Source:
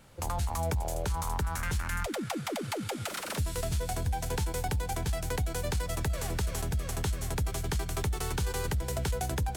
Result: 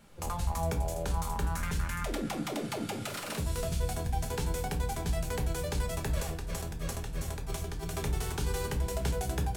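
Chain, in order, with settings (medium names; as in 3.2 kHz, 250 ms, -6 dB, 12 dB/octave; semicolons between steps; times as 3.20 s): 6.16–7.85 s: compressor with a negative ratio -34 dBFS, ratio -0.5; simulated room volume 260 m³, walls furnished, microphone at 1.3 m; trim -3.5 dB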